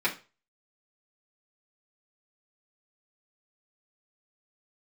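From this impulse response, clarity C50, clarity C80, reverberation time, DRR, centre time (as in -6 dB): 13.5 dB, 19.5 dB, 0.30 s, -7.0 dB, 13 ms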